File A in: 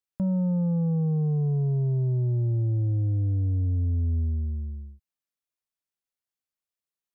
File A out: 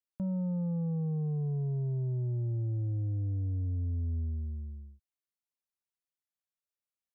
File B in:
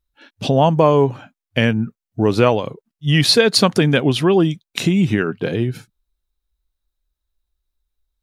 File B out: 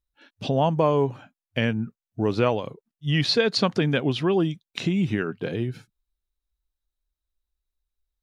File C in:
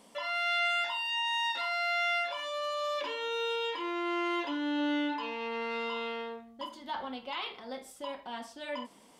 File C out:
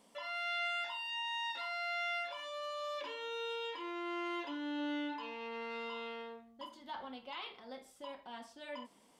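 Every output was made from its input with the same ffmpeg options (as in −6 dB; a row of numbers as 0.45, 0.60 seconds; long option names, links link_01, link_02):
-filter_complex "[0:a]acrossover=split=6200[link_01][link_02];[link_02]acompressor=threshold=-55dB:ratio=4:attack=1:release=60[link_03];[link_01][link_03]amix=inputs=2:normalize=0,volume=-7.5dB"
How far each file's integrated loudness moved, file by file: −7.5, −7.5, −7.5 LU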